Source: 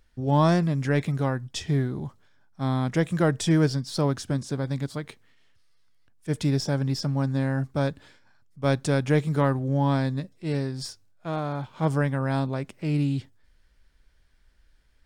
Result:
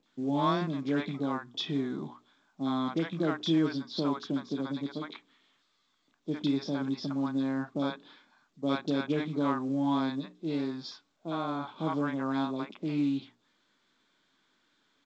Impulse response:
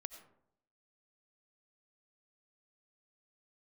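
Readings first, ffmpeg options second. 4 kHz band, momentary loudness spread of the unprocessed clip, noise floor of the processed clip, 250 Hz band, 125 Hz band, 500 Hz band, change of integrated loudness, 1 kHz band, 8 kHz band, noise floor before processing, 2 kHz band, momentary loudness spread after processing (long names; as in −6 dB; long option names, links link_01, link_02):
−2.0 dB, 10 LU, −73 dBFS, −2.5 dB, −14.5 dB, −7.0 dB, −6.0 dB, −4.0 dB, below −15 dB, −61 dBFS, −6.5 dB, 9 LU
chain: -filter_complex "[0:a]equalizer=frequency=2900:width_type=o:width=0.31:gain=-4,bandreject=frequency=60:width_type=h:width=6,bandreject=frequency=120:width_type=h:width=6,bandreject=frequency=180:width_type=h:width=6,bandreject=frequency=240:width_type=h:width=6,bandreject=frequency=300:width_type=h:width=6,bandreject=frequency=360:width_type=h:width=6,bandreject=frequency=420:width_type=h:width=6,asplit=2[link_01][link_02];[link_02]acompressor=threshold=-31dB:ratio=10,volume=2.5dB[link_03];[link_01][link_03]amix=inputs=2:normalize=0,asoftclip=type=hard:threshold=-12dB,highpass=frequency=200:width=0.5412,highpass=frequency=200:width=1.3066,equalizer=frequency=290:width_type=q:width=4:gain=4,equalizer=frequency=510:width_type=q:width=4:gain=-5,equalizer=frequency=1100:width_type=q:width=4:gain=5,equalizer=frequency=1800:width_type=q:width=4:gain=-6,equalizer=frequency=3500:width_type=q:width=4:gain=9,lowpass=frequency=4200:width=0.5412,lowpass=frequency=4200:width=1.3066,acrossover=split=680|2900[link_04][link_05][link_06];[link_06]adelay=30[link_07];[link_05]adelay=60[link_08];[link_04][link_08][link_07]amix=inputs=3:normalize=0,volume=-6dB" -ar 16000 -c:a pcm_mulaw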